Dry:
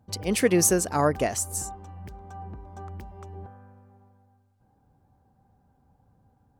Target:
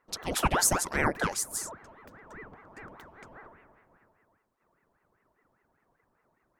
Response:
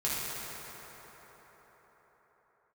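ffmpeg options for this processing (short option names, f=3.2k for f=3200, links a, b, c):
-af "bass=f=250:g=-13,treble=f=4k:g=0,aeval=exprs='val(0)*sin(2*PI*670*n/s+670*0.85/5*sin(2*PI*5*n/s))':c=same"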